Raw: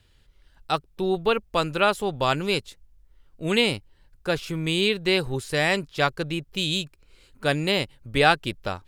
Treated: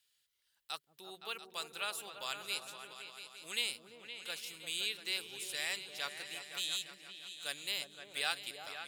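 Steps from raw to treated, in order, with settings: differentiator; on a send: repeats that get brighter 0.172 s, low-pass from 200 Hz, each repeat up 2 oct, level -3 dB; on the sum: gain -4.5 dB

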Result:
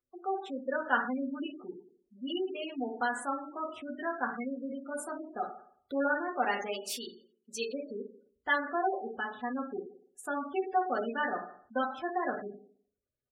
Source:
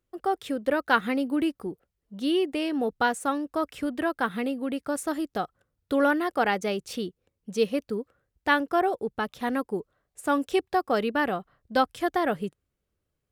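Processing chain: 6.71–7.73 tilt +3 dB/oct; frequency-shifting echo 0.108 s, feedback 33%, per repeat +42 Hz, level -22 dB; reverb RT60 0.60 s, pre-delay 4 ms, DRR -1 dB; spectral gate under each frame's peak -20 dB strong; low shelf 410 Hz -11 dB; gain -7 dB

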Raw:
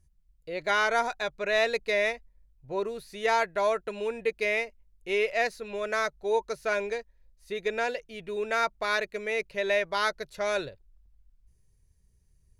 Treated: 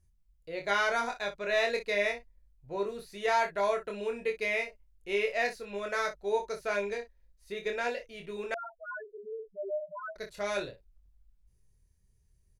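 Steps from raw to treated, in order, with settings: early reflections 25 ms -4 dB, 59 ms -12.5 dB; 8.54–10.16 loudest bins only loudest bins 1; gain -4.5 dB

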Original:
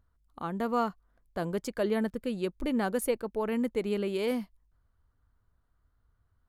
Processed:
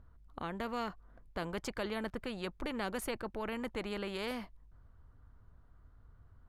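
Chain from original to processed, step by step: LPF 1400 Hz 6 dB/oct; low shelf 96 Hz +7.5 dB; spectral compressor 2:1; gain -6 dB

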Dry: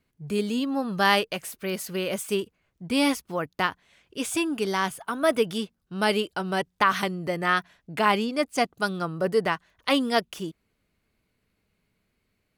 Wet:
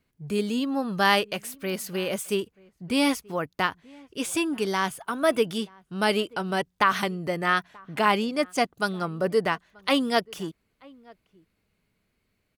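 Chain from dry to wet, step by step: outdoor echo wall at 160 m, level -25 dB

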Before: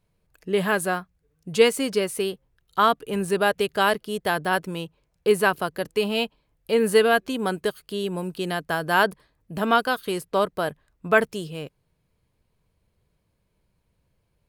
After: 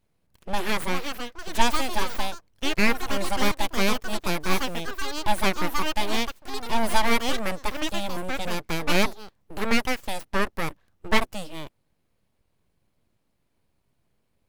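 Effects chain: full-wave rectifier; echoes that change speed 0.543 s, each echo +5 st, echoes 2, each echo -6 dB; 4.4–4.82 modulation noise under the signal 26 dB

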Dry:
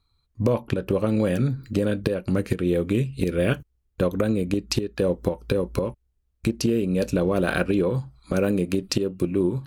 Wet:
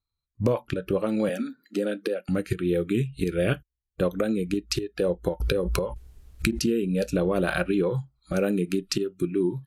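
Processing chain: spectral noise reduction 16 dB; 1.29–2.29 elliptic high-pass 210 Hz, stop band 40 dB; downsampling 32000 Hz; 5.4–6.65 backwards sustainer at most 23 dB/s; gain -1.5 dB

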